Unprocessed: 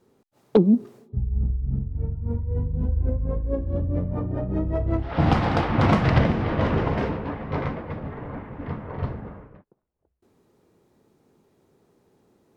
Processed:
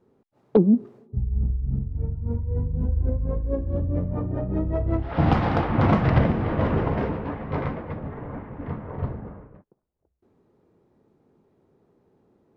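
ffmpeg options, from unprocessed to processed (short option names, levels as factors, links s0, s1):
-af "asetnsamples=n=441:p=0,asendcmd='1.38 lowpass f 1900;3.12 lowpass f 2900;5.57 lowpass f 1800;7.14 lowpass f 2800;7.94 lowpass f 1800;8.9 lowpass f 1200',lowpass=f=1200:p=1"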